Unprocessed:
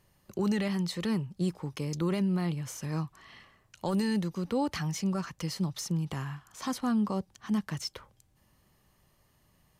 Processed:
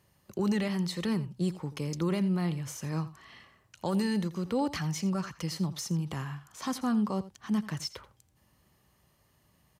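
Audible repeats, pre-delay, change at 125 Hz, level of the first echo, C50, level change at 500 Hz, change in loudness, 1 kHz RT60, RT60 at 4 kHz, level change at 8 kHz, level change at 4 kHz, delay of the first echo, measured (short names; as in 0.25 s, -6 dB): 1, none, 0.0 dB, -16.0 dB, none, 0.0 dB, 0.0 dB, none, none, 0.0 dB, 0.0 dB, 84 ms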